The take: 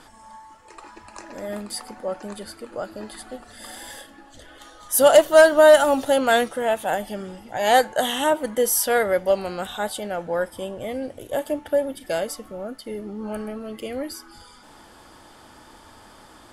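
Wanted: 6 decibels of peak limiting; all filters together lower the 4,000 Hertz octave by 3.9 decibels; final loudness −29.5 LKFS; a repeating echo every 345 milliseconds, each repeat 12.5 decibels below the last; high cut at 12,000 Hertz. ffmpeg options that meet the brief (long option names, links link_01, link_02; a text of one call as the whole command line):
ffmpeg -i in.wav -af "lowpass=12000,equalizer=frequency=4000:width_type=o:gain=-5.5,alimiter=limit=-10.5dB:level=0:latency=1,aecho=1:1:345|690|1035:0.237|0.0569|0.0137,volume=-5.5dB" out.wav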